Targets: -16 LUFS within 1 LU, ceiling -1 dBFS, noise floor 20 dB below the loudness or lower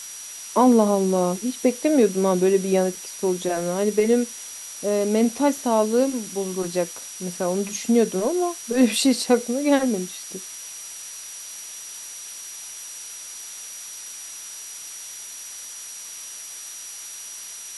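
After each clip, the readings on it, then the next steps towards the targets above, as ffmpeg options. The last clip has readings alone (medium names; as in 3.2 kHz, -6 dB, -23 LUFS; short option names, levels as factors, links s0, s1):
steady tone 5.8 kHz; tone level -38 dBFS; noise floor -38 dBFS; noise floor target -44 dBFS; loudness -24.0 LUFS; peak level -5.5 dBFS; loudness target -16.0 LUFS
-> -af "bandreject=f=5800:w=30"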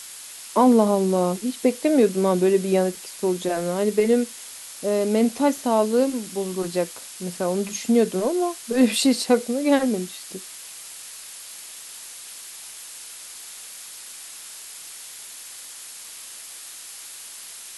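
steady tone not found; noise floor -40 dBFS; noise floor target -42 dBFS
-> -af "afftdn=nr=6:nf=-40"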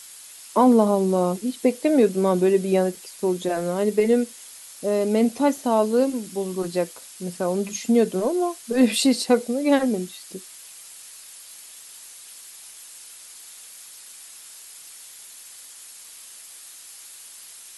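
noise floor -44 dBFS; loudness -22.0 LUFS; peak level -5.5 dBFS; loudness target -16.0 LUFS
-> -af "volume=2,alimiter=limit=0.891:level=0:latency=1"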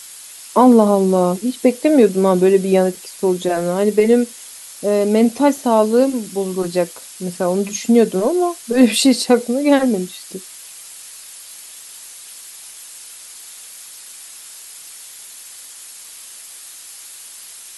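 loudness -16.0 LUFS; peak level -1.0 dBFS; noise floor -38 dBFS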